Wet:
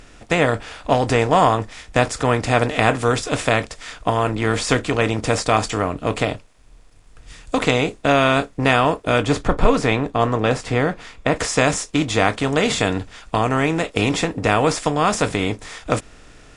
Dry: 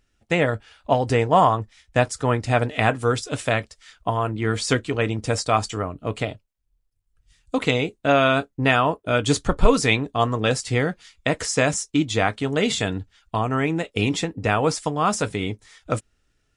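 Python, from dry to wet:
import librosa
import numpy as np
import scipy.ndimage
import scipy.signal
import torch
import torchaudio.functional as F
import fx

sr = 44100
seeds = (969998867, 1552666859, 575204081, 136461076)

y = fx.bin_compress(x, sr, power=0.6)
y = fx.high_shelf(y, sr, hz=3400.0, db=-10.5, at=(9.24, 11.36))
y = y * 10.0 ** (-1.0 / 20.0)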